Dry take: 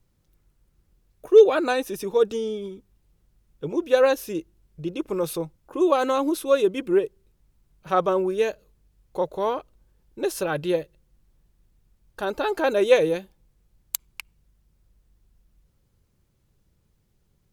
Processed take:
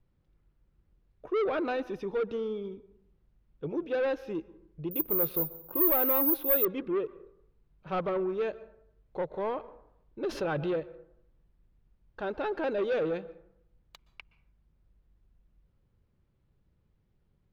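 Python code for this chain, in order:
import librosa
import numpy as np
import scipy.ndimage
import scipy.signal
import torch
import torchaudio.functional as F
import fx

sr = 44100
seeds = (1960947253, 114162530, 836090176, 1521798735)

y = 10.0 ** (-21.0 / 20.0) * np.tanh(x / 10.0 ** (-21.0 / 20.0))
y = fx.air_absorb(y, sr, metres=290.0)
y = fx.rev_plate(y, sr, seeds[0], rt60_s=0.75, hf_ratio=0.45, predelay_ms=110, drr_db=18.5)
y = fx.resample_bad(y, sr, factor=3, down='none', up='zero_stuff', at=(4.91, 6.65))
y = fx.env_flatten(y, sr, amount_pct=50, at=(10.29, 10.8))
y = y * 10.0 ** (-3.5 / 20.0)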